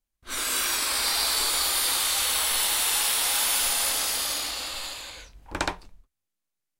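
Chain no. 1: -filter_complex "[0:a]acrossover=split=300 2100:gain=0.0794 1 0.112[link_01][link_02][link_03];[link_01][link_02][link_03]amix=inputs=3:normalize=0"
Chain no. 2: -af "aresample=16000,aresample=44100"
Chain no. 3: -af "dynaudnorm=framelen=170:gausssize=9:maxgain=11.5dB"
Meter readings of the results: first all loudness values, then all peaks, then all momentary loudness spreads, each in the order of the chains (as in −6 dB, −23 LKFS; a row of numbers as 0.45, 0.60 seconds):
−34.5, −26.0, −14.0 LKFS; −13.0, −11.5, −2.5 dBFS; 10, 12, 13 LU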